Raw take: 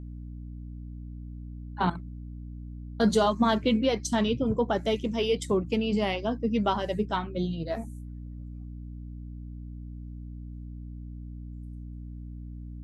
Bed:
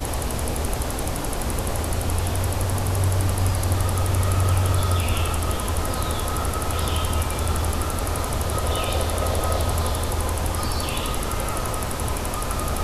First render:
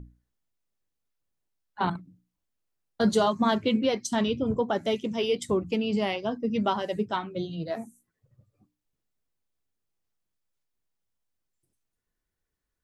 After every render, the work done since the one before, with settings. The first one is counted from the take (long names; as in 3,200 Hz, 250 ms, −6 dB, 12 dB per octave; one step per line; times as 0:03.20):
mains-hum notches 60/120/180/240/300 Hz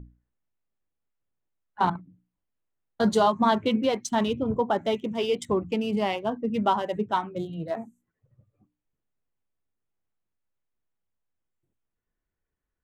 adaptive Wiener filter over 9 samples
dynamic equaliser 910 Hz, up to +6 dB, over −40 dBFS, Q 1.9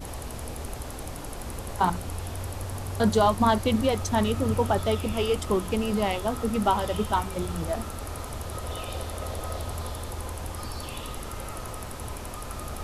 mix in bed −10.5 dB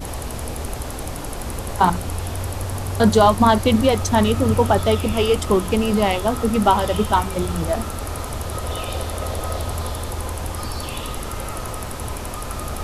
level +7.5 dB
brickwall limiter −3 dBFS, peak gain reduction 1 dB